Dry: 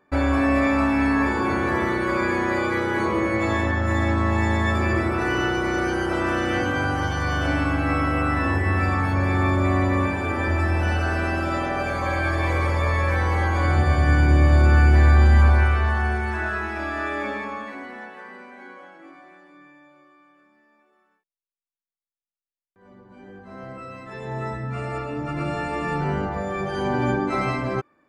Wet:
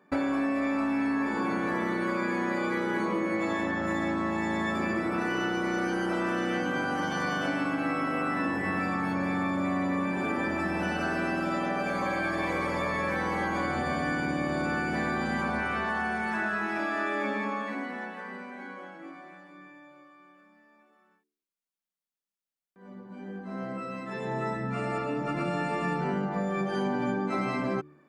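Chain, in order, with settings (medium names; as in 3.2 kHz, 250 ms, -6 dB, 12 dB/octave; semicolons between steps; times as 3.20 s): resonant low shelf 130 Hz -11 dB, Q 3; de-hum 73.87 Hz, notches 6; compression, threshold -26 dBFS, peak gain reduction 11 dB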